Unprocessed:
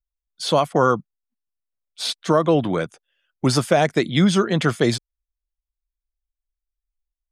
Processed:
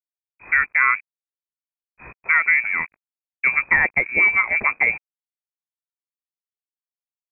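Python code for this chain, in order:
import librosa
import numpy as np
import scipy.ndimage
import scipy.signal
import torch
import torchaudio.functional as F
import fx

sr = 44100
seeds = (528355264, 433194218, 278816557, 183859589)

y = fx.add_hum(x, sr, base_hz=50, snr_db=22)
y = np.sign(y) * np.maximum(np.abs(y) - 10.0 ** (-37.5 / 20.0), 0.0)
y = fx.freq_invert(y, sr, carrier_hz=2500)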